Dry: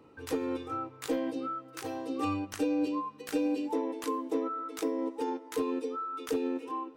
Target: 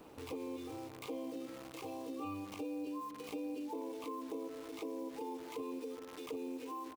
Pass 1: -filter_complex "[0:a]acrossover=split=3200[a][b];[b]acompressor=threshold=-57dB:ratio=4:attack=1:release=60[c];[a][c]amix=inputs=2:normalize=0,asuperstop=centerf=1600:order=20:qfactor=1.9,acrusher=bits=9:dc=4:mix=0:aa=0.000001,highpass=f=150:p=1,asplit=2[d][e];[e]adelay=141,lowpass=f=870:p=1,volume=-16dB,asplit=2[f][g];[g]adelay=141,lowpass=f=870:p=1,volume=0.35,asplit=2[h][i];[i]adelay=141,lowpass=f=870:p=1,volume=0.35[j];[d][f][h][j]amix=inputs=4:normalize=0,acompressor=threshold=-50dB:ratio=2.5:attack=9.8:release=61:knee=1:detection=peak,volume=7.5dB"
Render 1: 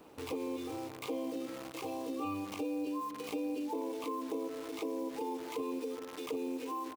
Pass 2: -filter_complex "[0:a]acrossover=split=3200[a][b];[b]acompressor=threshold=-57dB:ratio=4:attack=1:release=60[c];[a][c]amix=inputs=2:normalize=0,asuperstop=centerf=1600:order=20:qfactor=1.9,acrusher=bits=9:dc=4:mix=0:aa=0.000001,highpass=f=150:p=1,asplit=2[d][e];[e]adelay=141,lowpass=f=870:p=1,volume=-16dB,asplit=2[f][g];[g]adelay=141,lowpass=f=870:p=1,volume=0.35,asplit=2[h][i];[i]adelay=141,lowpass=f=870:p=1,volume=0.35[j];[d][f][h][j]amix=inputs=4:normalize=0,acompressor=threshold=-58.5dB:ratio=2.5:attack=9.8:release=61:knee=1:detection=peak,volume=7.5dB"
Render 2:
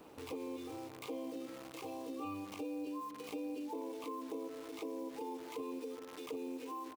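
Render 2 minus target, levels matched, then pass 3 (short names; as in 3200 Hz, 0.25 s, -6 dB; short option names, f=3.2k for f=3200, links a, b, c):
125 Hz band -2.5 dB
-filter_complex "[0:a]acrossover=split=3200[a][b];[b]acompressor=threshold=-57dB:ratio=4:attack=1:release=60[c];[a][c]amix=inputs=2:normalize=0,asuperstop=centerf=1600:order=20:qfactor=1.9,acrusher=bits=9:dc=4:mix=0:aa=0.000001,highpass=f=70:p=1,asplit=2[d][e];[e]adelay=141,lowpass=f=870:p=1,volume=-16dB,asplit=2[f][g];[g]adelay=141,lowpass=f=870:p=1,volume=0.35,asplit=2[h][i];[i]adelay=141,lowpass=f=870:p=1,volume=0.35[j];[d][f][h][j]amix=inputs=4:normalize=0,acompressor=threshold=-58.5dB:ratio=2.5:attack=9.8:release=61:knee=1:detection=peak,volume=7.5dB"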